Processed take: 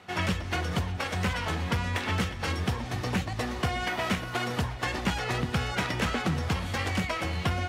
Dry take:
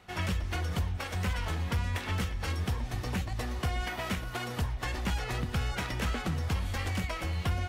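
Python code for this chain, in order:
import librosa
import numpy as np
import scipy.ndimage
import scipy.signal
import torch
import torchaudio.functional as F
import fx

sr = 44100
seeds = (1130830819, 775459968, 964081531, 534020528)

y = scipy.signal.sosfilt(scipy.signal.butter(2, 110.0, 'highpass', fs=sr, output='sos'), x)
y = fx.high_shelf(y, sr, hz=11000.0, db=-11.0)
y = y + 10.0 ** (-19.0 / 20.0) * np.pad(y, (int(360 * sr / 1000.0), 0))[:len(y)]
y = F.gain(torch.from_numpy(y), 6.0).numpy()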